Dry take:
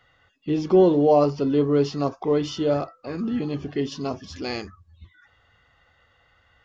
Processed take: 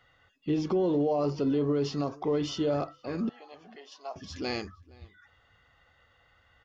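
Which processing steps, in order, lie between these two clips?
limiter -17 dBFS, peak gain reduction 9.5 dB; 3.29–4.16 ladder high-pass 630 Hz, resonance 55%; outdoor echo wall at 80 m, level -24 dB; gain -3 dB

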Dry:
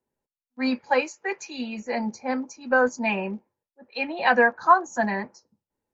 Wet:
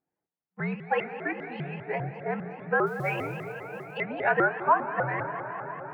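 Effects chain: mistuned SSB -72 Hz 160–2500 Hz; on a send at -9 dB: reverb RT60 5.7 s, pre-delay 47 ms; on the sum: added harmonics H 3 -43 dB, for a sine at -5 dBFS; 2.86–3.98 modulation noise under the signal 31 dB; in parallel at +0.5 dB: compressor, threshold -26 dBFS, peak gain reduction 14.5 dB; on the sum: low shelf 290 Hz -6 dB; shaped vibrato saw up 5 Hz, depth 250 cents; gain -6.5 dB

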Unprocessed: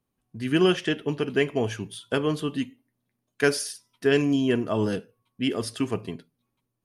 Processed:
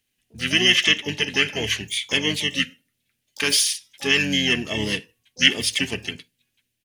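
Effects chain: limiter -14 dBFS, peak gain reduction 6 dB; resonant high shelf 1900 Hz +13 dB, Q 3; harmoniser -7 st -6 dB, +12 st -15 dB; gain -3 dB

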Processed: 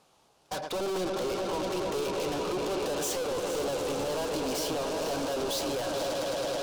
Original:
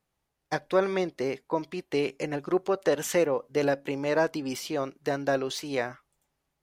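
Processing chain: LPF 11000 Hz; on a send: swelling echo 0.107 s, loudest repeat 5, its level -17.5 dB; on the sum: overdrive pedal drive 24 dB, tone 4400 Hz, clips at -8 dBFS; limiter -17.5 dBFS, peak gain reduction 8 dB; soft clip -34.5 dBFS, distortion -7 dB; bell 1900 Hz -13 dB 0.73 oct; echo with dull and thin repeats by turns 0.23 s, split 1000 Hz, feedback 56%, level -7.5 dB; gain +5 dB

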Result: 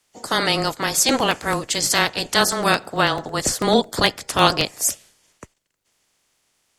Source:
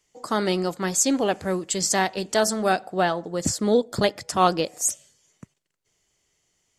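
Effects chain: spectral limiter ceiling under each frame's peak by 18 dB; frequency shift -16 Hz; crackling interface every 0.11 s, samples 64, repeat, from 0.65; gain +3.5 dB

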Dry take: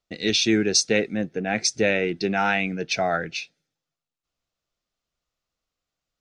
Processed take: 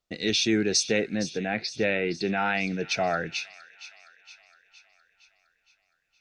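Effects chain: in parallel at -0.5 dB: limiter -18.5 dBFS, peak gain reduction 10.5 dB; 1.15–2.55 on the sum: elliptic low-pass 4700 Hz; thin delay 0.464 s, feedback 57%, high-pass 2000 Hz, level -13.5 dB; gain -6.5 dB

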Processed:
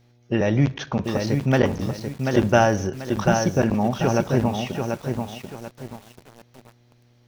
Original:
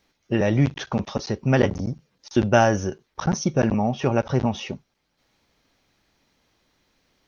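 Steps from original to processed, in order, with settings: buzz 120 Hz, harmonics 7, -58 dBFS -8 dB/oct; on a send at -19 dB: reverb RT60 0.90 s, pre-delay 39 ms; on the sum: lo-fi delay 0.738 s, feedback 35%, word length 7-bit, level -5 dB

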